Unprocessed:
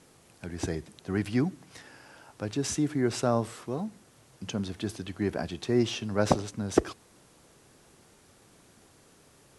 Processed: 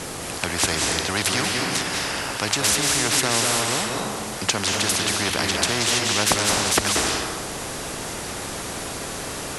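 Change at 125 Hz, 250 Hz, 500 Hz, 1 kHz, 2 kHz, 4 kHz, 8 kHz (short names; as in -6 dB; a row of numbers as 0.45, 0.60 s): +2.5, +1.0, +3.5, +11.5, +18.0, +20.0, +20.0 dB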